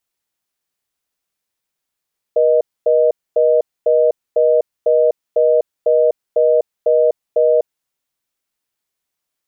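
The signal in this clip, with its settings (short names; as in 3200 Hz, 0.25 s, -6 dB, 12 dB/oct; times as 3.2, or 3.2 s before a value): call progress tone reorder tone, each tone -12.5 dBFS 5.36 s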